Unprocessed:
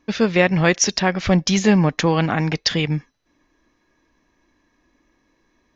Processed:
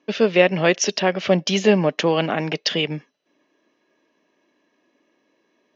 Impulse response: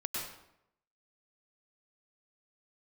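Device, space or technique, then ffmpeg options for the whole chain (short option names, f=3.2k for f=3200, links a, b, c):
television speaker: -af "highpass=f=170:w=0.5412,highpass=f=170:w=1.3066,equalizer=f=410:t=q:w=4:g=7,equalizer=f=600:t=q:w=4:g=9,equalizer=f=2.9k:t=q:w=4:g=9,lowpass=f=6.7k:w=0.5412,lowpass=f=6.7k:w=1.3066,volume=-3.5dB"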